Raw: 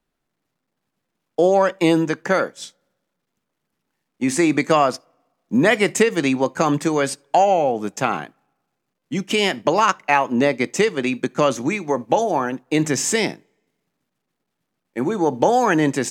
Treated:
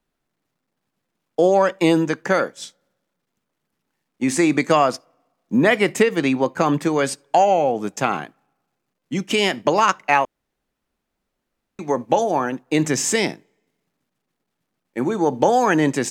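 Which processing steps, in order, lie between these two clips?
0:05.55–0:06.99: parametric band 7,100 Hz −6.5 dB 1.1 octaves
0:10.25–0:11.79: fill with room tone

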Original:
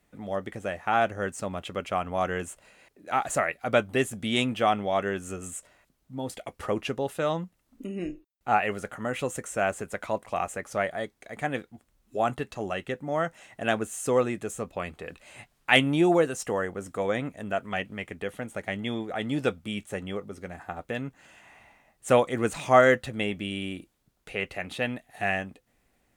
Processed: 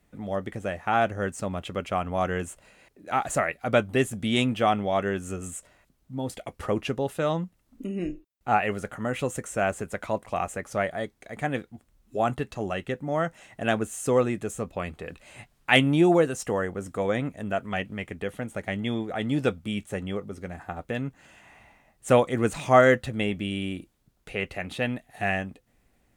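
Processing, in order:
low-shelf EQ 250 Hz +6 dB

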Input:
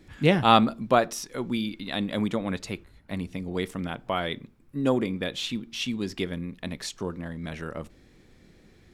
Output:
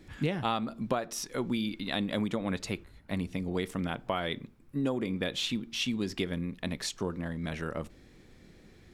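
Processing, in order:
downward compressor 16 to 1, threshold −26 dBFS, peak gain reduction 15 dB

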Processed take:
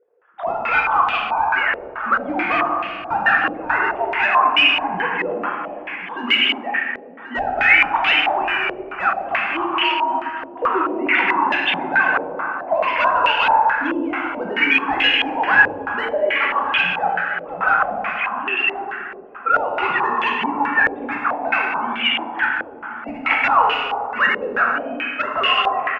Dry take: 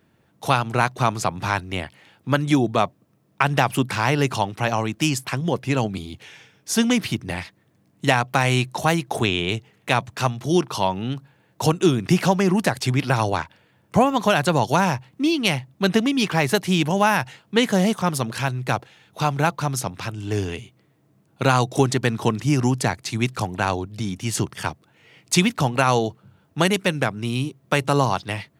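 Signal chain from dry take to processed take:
three sine waves on the formant tracks
dynamic equaliser 370 Hz, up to −5 dB, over −32 dBFS, Q 0.78
in parallel at −1.5 dB: downward compressor 6 to 1, threshold −33 dBFS, peak gain reduction 21 dB
on the sum: tempo change 1.1×
tilt shelving filter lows −9.5 dB, about 730 Hz
hard clipping −16 dBFS, distortion −11 dB
on a send: repeating echo 1,083 ms, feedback 31%, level −13.5 dB
on the sum: dense smooth reverb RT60 2.5 s, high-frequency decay 0.6×, DRR −3 dB
low-pass on a step sequencer 4.6 Hz 500–2,800 Hz
level −5 dB

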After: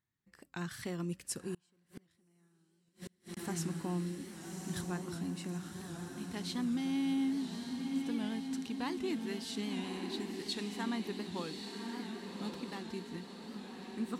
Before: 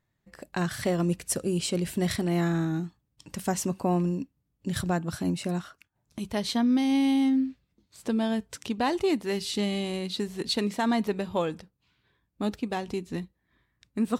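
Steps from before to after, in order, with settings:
high-pass filter 100 Hz 6 dB per octave
parametric band 610 Hz −12.5 dB 0.58 octaves
tuned comb filter 270 Hz, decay 1.1 s, mix 30%
feedback delay with all-pass diffusion 1,124 ms, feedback 56%, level −4.5 dB
0:01.54–0:03.37: gate with flip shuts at −26 dBFS, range −34 dB
wow of a warped record 78 rpm, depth 100 cents
level −7 dB

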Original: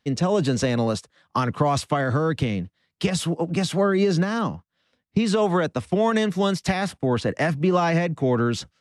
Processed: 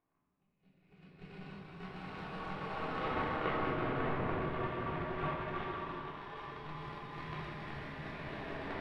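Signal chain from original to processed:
harmonic-percussive split with one part muted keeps percussive
brickwall limiter −19.5 dBFS, peak gain reduction 9 dB
extreme stretch with random phases 4×, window 1.00 s, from 0:04.76
power curve on the samples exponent 3
high-frequency loss of the air 460 metres
convolution reverb RT60 1.1 s, pre-delay 3 ms, DRR −7.5 dB
level +2 dB

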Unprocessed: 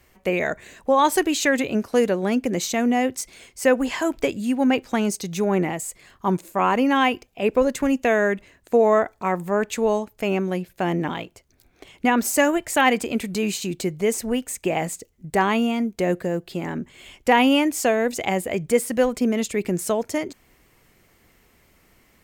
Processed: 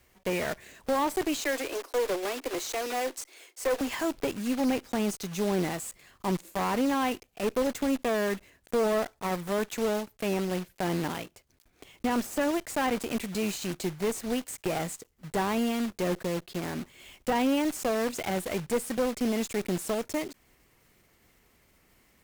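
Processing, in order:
one scale factor per block 3 bits
0:01.41–0:03.81: Butterworth high-pass 290 Hz 72 dB per octave
de-essing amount 45%
tube saturation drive 16 dB, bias 0.5
level −4 dB

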